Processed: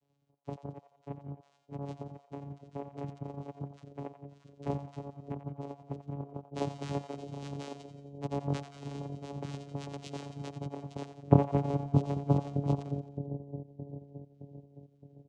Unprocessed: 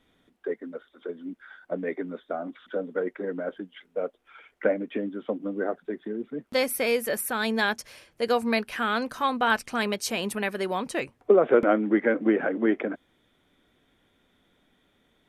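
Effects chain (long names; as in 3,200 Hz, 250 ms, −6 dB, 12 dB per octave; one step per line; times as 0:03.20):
gain on one half-wave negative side −12 dB
reverb reduction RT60 2 s
in parallel at −8.5 dB: asymmetric clip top −24.5 dBFS
on the sum: cochlear-implant simulation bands 6
linear-phase brick-wall band-stop 760–2,200 Hz
comb filter 3.3 ms, depth 87%
flanger swept by the level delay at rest 10.6 ms, full sweep at −21 dBFS
channel vocoder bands 4, saw 141 Hz
echo with a time of its own for lows and highs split 580 Hz, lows 617 ms, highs 88 ms, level −10.5 dB
level −4 dB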